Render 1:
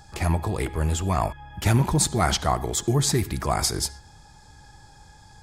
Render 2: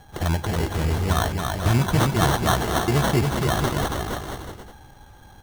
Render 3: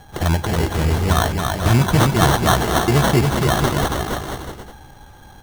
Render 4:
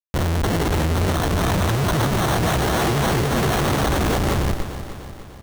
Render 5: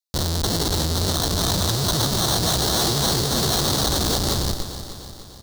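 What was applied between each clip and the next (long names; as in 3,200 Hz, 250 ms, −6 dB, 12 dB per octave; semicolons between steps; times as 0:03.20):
decimation without filtering 18×; on a send: bouncing-ball delay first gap 280 ms, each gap 0.75×, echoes 5
mains-hum notches 50/100 Hz; level +5 dB
comparator with hysteresis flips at −28 dBFS; repeating echo 298 ms, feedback 56%, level −11 dB; level −1.5 dB
high shelf with overshoot 3,200 Hz +9 dB, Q 3; level −3.5 dB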